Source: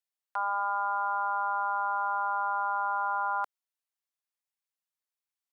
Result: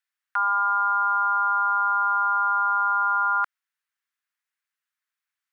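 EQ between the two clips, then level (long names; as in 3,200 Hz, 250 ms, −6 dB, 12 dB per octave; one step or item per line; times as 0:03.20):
high-pass filter 1,100 Hz 12 dB per octave
parametric band 1,600 Hz +14.5 dB 1.5 octaves
0.0 dB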